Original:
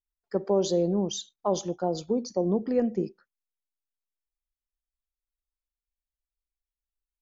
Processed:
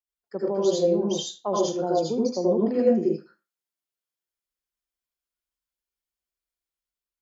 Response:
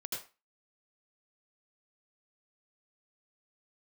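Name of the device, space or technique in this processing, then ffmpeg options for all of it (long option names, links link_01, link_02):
far laptop microphone: -filter_complex "[1:a]atrim=start_sample=2205[link_01];[0:a][link_01]afir=irnorm=-1:irlink=0,highpass=frequency=140:poles=1,dynaudnorm=framelen=620:gausssize=3:maxgain=3.5dB"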